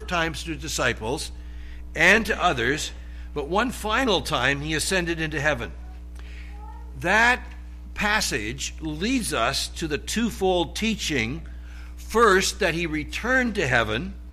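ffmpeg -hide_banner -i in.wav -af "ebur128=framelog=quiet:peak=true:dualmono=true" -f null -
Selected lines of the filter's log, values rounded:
Integrated loudness:
  I:         -20.1 LUFS
  Threshold: -31.0 LUFS
Loudness range:
  LRA:         2.7 LU
  Threshold: -41.1 LUFS
  LRA low:   -22.4 LUFS
  LRA high:  -19.8 LUFS
True peak:
  Peak:       -5.6 dBFS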